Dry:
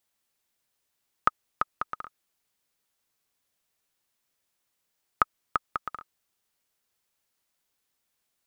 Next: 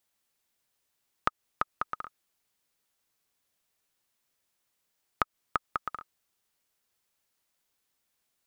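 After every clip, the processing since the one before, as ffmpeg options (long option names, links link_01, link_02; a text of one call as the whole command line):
ffmpeg -i in.wav -af "acompressor=threshold=-23dB:ratio=6" out.wav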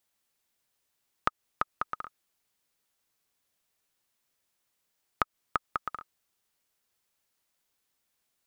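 ffmpeg -i in.wav -af anull out.wav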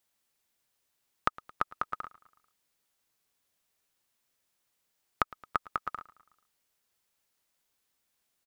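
ffmpeg -i in.wav -af "aecho=1:1:110|220|330|440:0.0891|0.0508|0.029|0.0165" out.wav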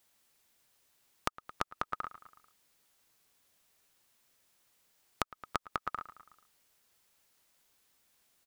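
ffmpeg -i in.wav -af "acompressor=threshold=-37dB:ratio=10,volume=7dB" out.wav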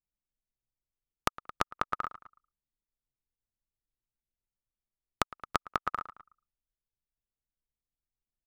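ffmpeg -i in.wav -filter_complex "[0:a]asplit=2[link_01][link_02];[link_02]adelay=180,highpass=300,lowpass=3400,asoftclip=type=hard:threshold=-17dB,volume=-28dB[link_03];[link_01][link_03]amix=inputs=2:normalize=0,anlmdn=0.00251,volume=4.5dB" out.wav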